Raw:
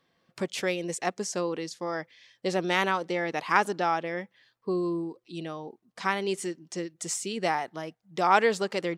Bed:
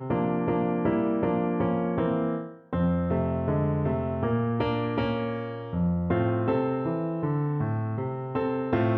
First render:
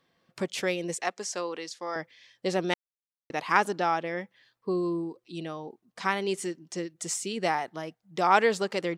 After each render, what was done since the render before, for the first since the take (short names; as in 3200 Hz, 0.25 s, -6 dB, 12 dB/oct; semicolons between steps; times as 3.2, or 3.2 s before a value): 1.01–1.96 weighting filter A; 2.74–3.3 mute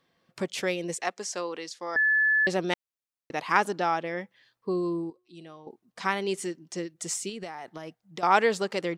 1.96–2.47 bleep 1730 Hz -19.5 dBFS; 5.1–5.67 resonator 360 Hz, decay 0.57 s, mix 70%; 7.29–8.23 compressor 16:1, threshold -33 dBFS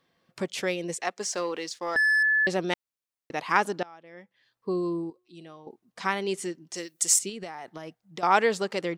1.2–2.23 sample leveller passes 1; 3.83–4.69 fade in quadratic, from -23 dB; 6.74–7.19 RIAA curve recording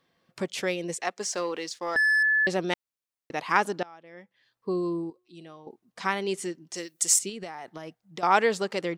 nothing audible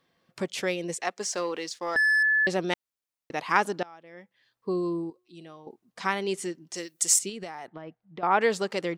7.67–8.41 air absorption 400 m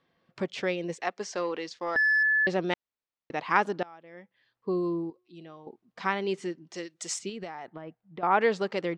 air absorption 150 m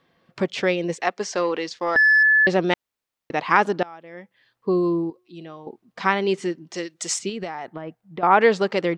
gain +8 dB; limiter -3 dBFS, peak gain reduction 3 dB